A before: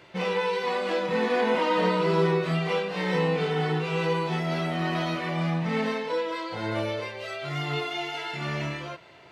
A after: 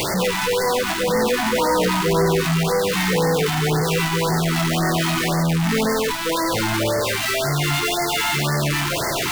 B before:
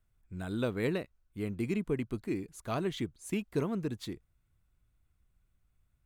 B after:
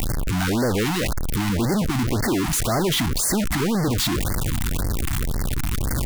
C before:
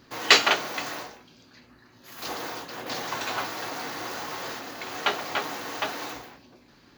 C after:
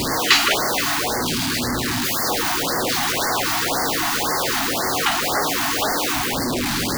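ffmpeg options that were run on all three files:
-af "aeval=exprs='val(0)+0.5*0.178*sgn(val(0))':channel_layout=same,afftfilt=real='re*(1-between(b*sr/1024,440*pow(3100/440,0.5+0.5*sin(2*PI*1.9*pts/sr))/1.41,440*pow(3100/440,0.5+0.5*sin(2*PI*1.9*pts/sr))*1.41))':imag='im*(1-between(b*sr/1024,440*pow(3100/440,0.5+0.5*sin(2*PI*1.9*pts/sr))/1.41,440*pow(3100/440,0.5+0.5*sin(2*PI*1.9*pts/sr))*1.41))':win_size=1024:overlap=0.75,volume=-1dB"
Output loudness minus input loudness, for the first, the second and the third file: +7.5, +12.5, +8.0 LU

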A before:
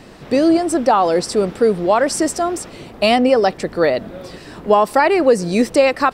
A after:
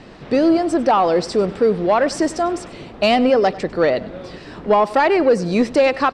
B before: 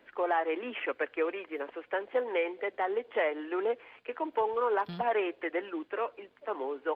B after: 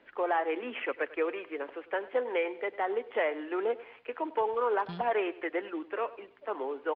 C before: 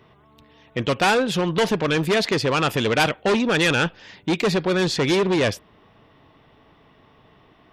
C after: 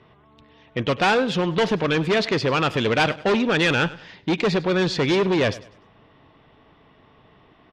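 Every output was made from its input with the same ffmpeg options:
-af "lowpass=5000,asoftclip=type=tanh:threshold=-6dB,aecho=1:1:99|198|297:0.119|0.0392|0.0129"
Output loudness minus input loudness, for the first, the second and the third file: −1.0, 0.0, −0.5 LU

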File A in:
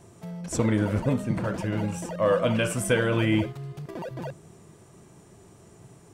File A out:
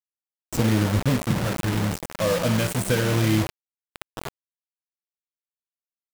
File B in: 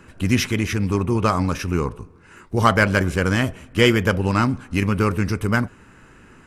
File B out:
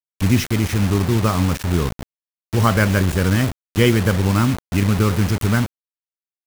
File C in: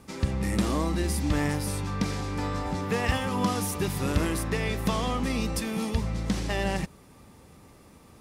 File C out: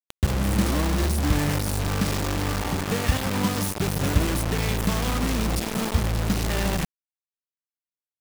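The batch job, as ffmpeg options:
-af "lowshelf=frequency=280:gain=9.5,acrusher=bits=3:mix=0:aa=0.000001,volume=-3.5dB"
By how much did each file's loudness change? +3.0, +1.5, +3.5 LU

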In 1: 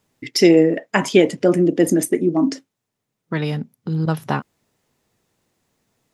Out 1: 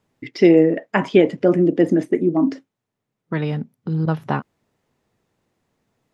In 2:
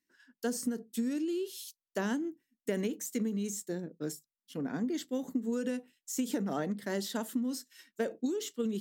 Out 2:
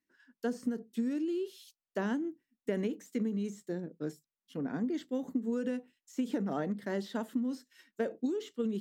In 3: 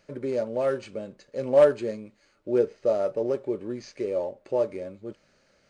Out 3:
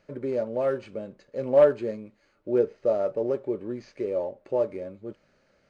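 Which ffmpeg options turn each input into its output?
-filter_complex "[0:a]highshelf=frequency=3900:gain=-11,acrossover=split=4500[link_01][link_02];[link_02]acompressor=threshold=-56dB:ratio=4:attack=1:release=60[link_03];[link_01][link_03]amix=inputs=2:normalize=0"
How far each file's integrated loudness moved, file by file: −0.5, −0.5, 0.0 LU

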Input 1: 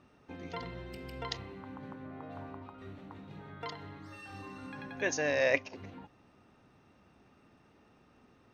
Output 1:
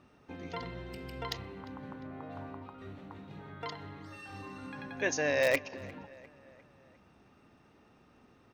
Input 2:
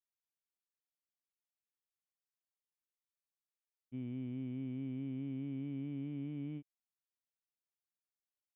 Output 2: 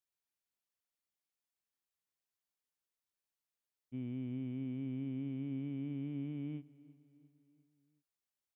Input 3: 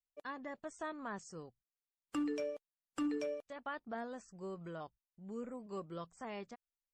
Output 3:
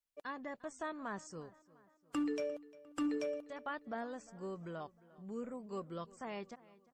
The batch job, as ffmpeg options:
-filter_complex "[0:a]asplit=2[link_01][link_02];[link_02]aeval=exprs='(mod(8.91*val(0)+1,2)-1)/8.91':channel_layout=same,volume=-8dB[link_03];[link_01][link_03]amix=inputs=2:normalize=0,asplit=2[link_04][link_05];[link_05]adelay=351,lowpass=frequency=4400:poles=1,volume=-20.5dB,asplit=2[link_06][link_07];[link_07]adelay=351,lowpass=frequency=4400:poles=1,volume=0.54,asplit=2[link_08][link_09];[link_09]adelay=351,lowpass=frequency=4400:poles=1,volume=0.54,asplit=2[link_10][link_11];[link_11]adelay=351,lowpass=frequency=4400:poles=1,volume=0.54[link_12];[link_04][link_06][link_08][link_10][link_12]amix=inputs=5:normalize=0,volume=-2dB"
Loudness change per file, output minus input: +0.5, +1.0, +1.0 LU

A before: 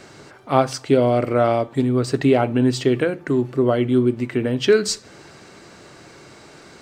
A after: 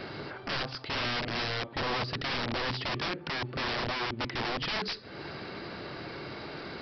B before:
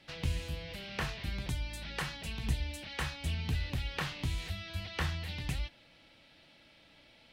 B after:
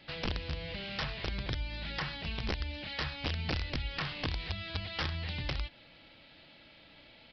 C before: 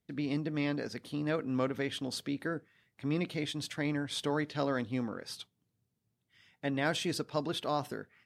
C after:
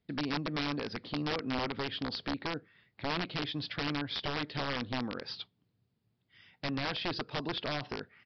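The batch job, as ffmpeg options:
-af "acompressor=threshold=-38dB:ratio=2,aresample=11025,aeval=exprs='(mod(35.5*val(0)+1,2)-1)/35.5':channel_layout=same,aresample=44100,volume=4dB"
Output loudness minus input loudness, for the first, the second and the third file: −14.0, +1.0, −1.0 LU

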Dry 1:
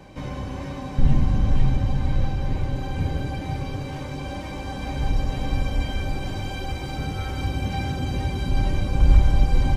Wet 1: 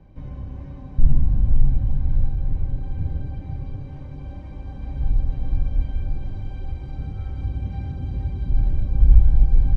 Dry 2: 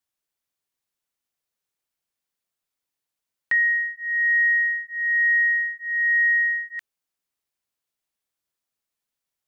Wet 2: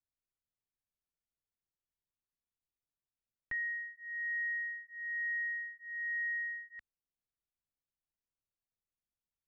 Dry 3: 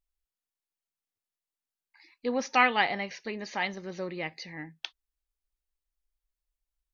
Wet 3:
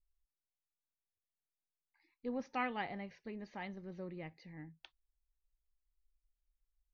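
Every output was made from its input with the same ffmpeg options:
-af "aemphasis=mode=reproduction:type=riaa,volume=-14.5dB"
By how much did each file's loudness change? +1.0, −17.0, −14.0 LU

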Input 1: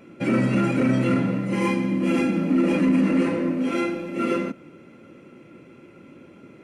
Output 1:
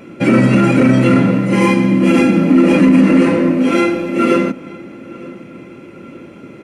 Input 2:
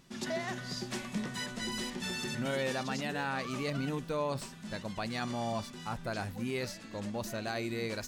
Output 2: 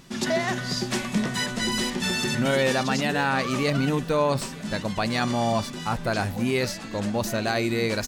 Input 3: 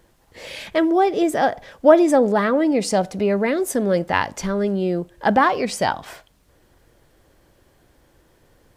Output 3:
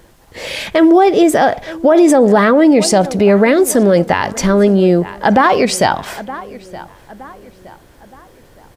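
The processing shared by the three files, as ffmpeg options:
-filter_complex "[0:a]asplit=2[link_01][link_02];[link_02]adelay=918,lowpass=frequency=3400:poles=1,volume=-21dB,asplit=2[link_03][link_04];[link_04]adelay=918,lowpass=frequency=3400:poles=1,volume=0.42,asplit=2[link_05][link_06];[link_06]adelay=918,lowpass=frequency=3400:poles=1,volume=0.42[link_07];[link_01][link_03][link_05][link_07]amix=inputs=4:normalize=0,alimiter=level_in=12dB:limit=-1dB:release=50:level=0:latency=1,volume=-1dB"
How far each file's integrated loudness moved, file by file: +10.5, +11.0, +8.0 LU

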